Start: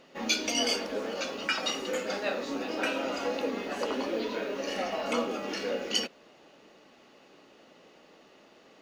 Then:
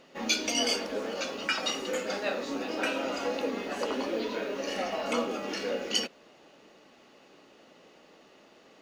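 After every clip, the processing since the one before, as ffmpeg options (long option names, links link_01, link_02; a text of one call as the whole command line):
ffmpeg -i in.wav -af "equalizer=frequency=8300:width=1.5:gain=2" out.wav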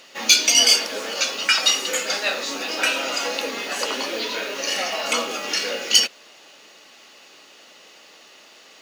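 ffmpeg -i in.wav -filter_complex "[0:a]asplit=2[link_01][link_02];[link_02]highpass=frequency=720:poles=1,volume=9dB,asoftclip=type=tanh:threshold=-11.5dB[link_03];[link_01][link_03]amix=inputs=2:normalize=0,lowpass=frequency=4700:poles=1,volume=-6dB,crystalizer=i=6.5:c=0" out.wav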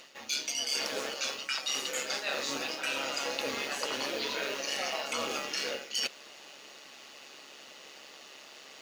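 ffmpeg -i in.wav -af "areverse,acompressor=threshold=-28dB:ratio=12,areverse,tremolo=f=140:d=0.519" out.wav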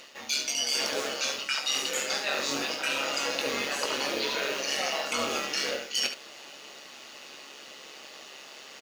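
ffmpeg -i in.wav -af "aecho=1:1:21|71:0.398|0.376,volume=3dB" out.wav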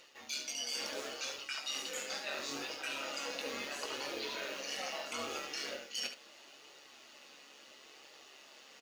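ffmpeg -i in.wav -af "flanger=delay=2.1:depth=2.1:regen=-53:speed=0.74:shape=triangular,volume=-6.5dB" out.wav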